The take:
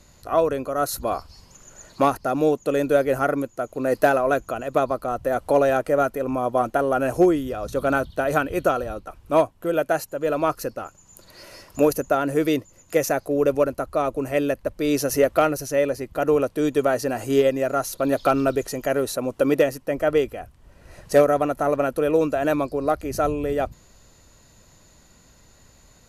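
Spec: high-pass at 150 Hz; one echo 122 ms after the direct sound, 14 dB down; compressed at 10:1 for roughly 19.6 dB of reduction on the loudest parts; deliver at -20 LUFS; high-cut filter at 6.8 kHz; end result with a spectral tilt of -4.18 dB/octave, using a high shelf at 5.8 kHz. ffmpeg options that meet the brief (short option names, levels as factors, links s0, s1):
-af "highpass=150,lowpass=6800,highshelf=f=5800:g=9,acompressor=threshold=0.0251:ratio=10,aecho=1:1:122:0.2,volume=7.08"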